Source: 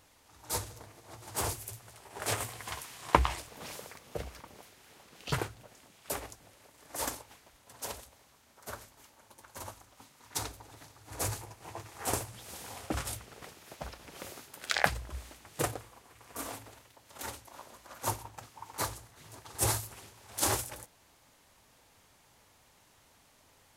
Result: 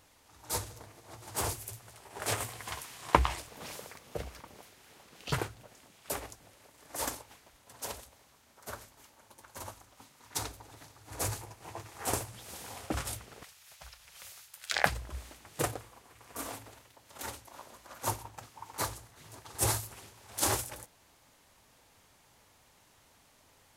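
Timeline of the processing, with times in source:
13.43–14.72 passive tone stack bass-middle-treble 10-0-10

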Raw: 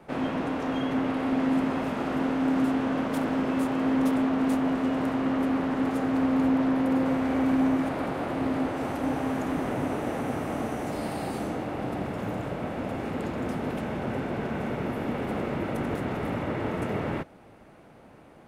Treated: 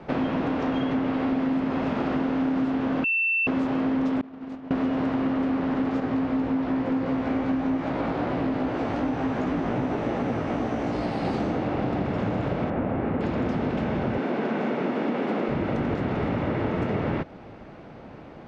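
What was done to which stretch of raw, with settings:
3.04–3.47 bleep 2680 Hz -21.5 dBFS
4.21–4.71 expander -12 dBFS
6–11.25 chorus 2.6 Hz, delay 16 ms, depth 2.2 ms
12.7–13.21 LPF 2000 Hz
14.18–15.49 HPF 200 Hz 24 dB/oct
whole clip: LPF 5500 Hz 24 dB/oct; low shelf 450 Hz +3.5 dB; compressor, threshold -29 dBFS; gain +6.5 dB

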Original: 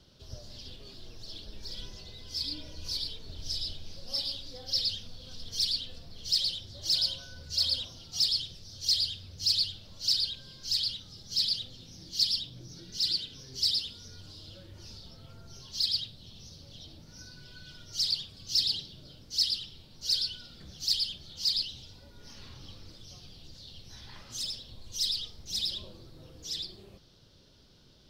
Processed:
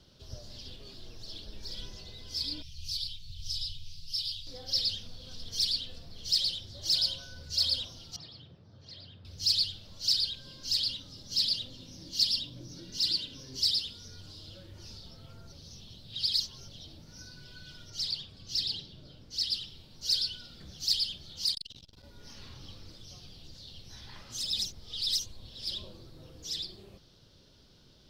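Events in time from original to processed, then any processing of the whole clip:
2.62–4.47 elliptic band-stop 140–2700 Hz, stop band 50 dB
8.16–9.25 Chebyshev band-pass 120–1300 Hz
10.45–13.62 small resonant body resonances 280/560/1000/2800 Hz, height 8 dB
15.52–16.68 reverse
17.9–19.51 high shelf 4800 Hz -9.5 dB
21.46–22.04 core saturation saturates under 3000 Hz
24.51–25.67 reverse

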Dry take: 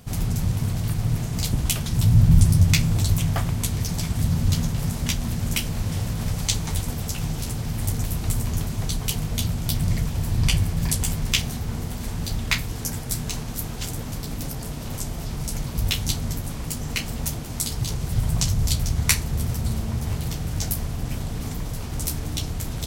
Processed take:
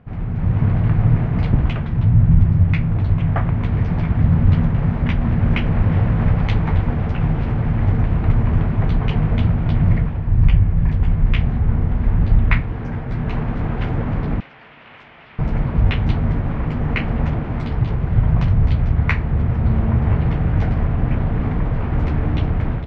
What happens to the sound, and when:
10.27–12.6 low shelf 120 Hz +10.5 dB
14.4–15.39 band-pass 2900 Hz, Q 1.6
whole clip: LPF 2100 Hz 24 dB/oct; AGC gain up to 11.5 dB; gain -1 dB

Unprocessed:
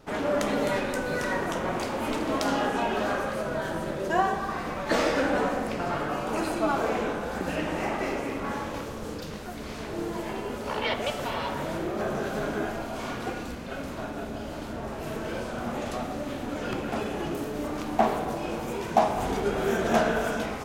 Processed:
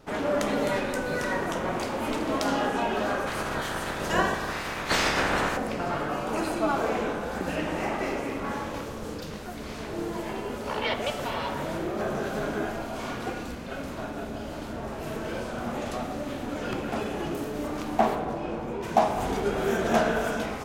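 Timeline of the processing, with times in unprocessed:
3.26–5.56 spectral limiter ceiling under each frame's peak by 17 dB
18.14–18.82 LPF 2900 Hz -> 1200 Hz 6 dB/oct

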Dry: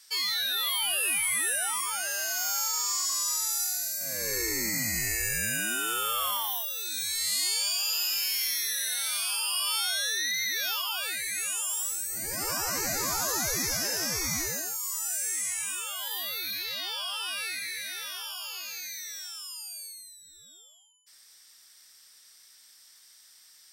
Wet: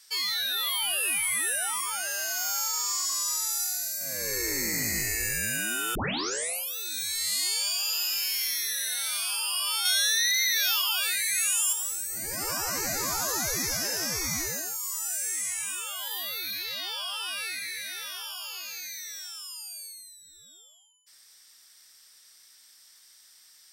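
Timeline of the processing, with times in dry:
4.13–4.72 echo throw 0.3 s, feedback 50%, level -8 dB
5.95 tape start 0.81 s
9.85–11.73 tilt shelf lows -6 dB

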